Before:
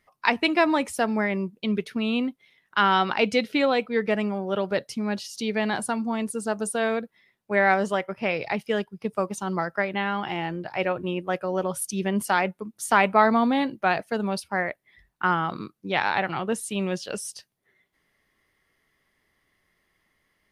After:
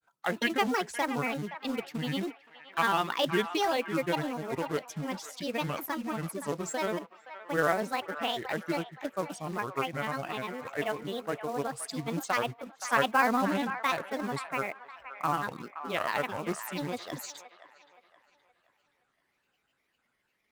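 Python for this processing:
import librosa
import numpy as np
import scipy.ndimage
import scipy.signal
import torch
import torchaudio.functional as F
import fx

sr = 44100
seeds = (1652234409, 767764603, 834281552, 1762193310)

y = scipy.signal.sosfilt(scipy.signal.butter(2, 43.0, 'highpass', fs=sr, output='sos'), x)
y = fx.peak_eq(y, sr, hz=78.0, db=-8.0, octaves=1.6)
y = fx.quant_float(y, sr, bits=2)
y = fx.granulator(y, sr, seeds[0], grain_ms=100.0, per_s=20.0, spray_ms=13.0, spread_st=7)
y = fx.echo_wet_bandpass(y, sr, ms=521, feedback_pct=37, hz=1400.0, wet_db=-10.5)
y = y * librosa.db_to_amplitude(-5.0)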